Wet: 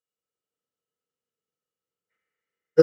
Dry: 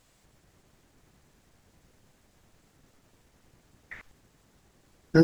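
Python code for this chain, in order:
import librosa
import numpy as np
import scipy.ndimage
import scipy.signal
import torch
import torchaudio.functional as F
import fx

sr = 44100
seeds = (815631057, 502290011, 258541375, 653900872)

y = scipy.signal.sosfilt(scipy.signal.butter(2, 130.0, 'highpass', fs=sr, output='sos'), x)
y = fx.high_shelf(y, sr, hz=2400.0, db=8.0)
y = fx.small_body(y, sr, hz=(470.0, 1300.0, 2900.0), ring_ms=50, db=17)
y = fx.stretch_vocoder_free(y, sr, factor=0.54)
y = fx.rev_schroeder(y, sr, rt60_s=4.0, comb_ms=30, drr_db=-3.0)
y = fx.upward_expand(y, sr, threshold_db=-31.0, expansion=2.5)
y = F.gain(torch.from_numpy(y), -1.5).numpy()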